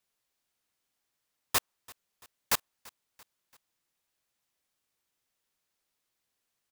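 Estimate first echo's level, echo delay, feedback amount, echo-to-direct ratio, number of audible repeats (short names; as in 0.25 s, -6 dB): -23.5 dB, 0.338 s, 51%, -22.5 dB, 2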